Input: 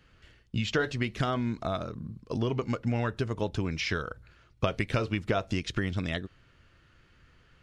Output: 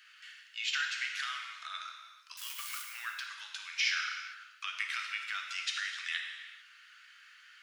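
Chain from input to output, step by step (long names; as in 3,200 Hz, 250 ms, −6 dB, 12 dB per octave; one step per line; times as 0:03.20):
0:02.37–0:02.82: spike at every zero crossing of −27.5 dBFS
downward compressor 2 to 1, threshold −40 dBFS, peak gain reduction 10.5 dB
Butterworth high-pass 1,400 Hz 36 dB per octave
on a send: convolution reverb, pre-delay 3 ms, DRR 1 dB
on the sum: level +7.5 dB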